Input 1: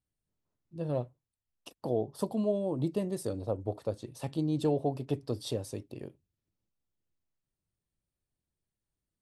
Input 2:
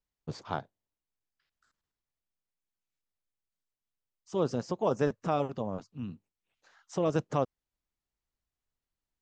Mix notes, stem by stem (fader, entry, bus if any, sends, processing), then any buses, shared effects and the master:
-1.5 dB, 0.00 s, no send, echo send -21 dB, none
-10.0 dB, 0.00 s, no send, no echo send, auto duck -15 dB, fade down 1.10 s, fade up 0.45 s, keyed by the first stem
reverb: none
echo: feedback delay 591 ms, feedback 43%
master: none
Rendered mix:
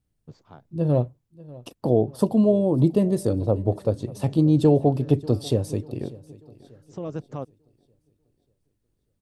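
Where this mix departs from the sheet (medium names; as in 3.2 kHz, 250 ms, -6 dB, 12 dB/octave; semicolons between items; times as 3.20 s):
stem 1 -1.5 dB -> +5.0 dB; master: extra bass shelf 500 Hz +9.5 dB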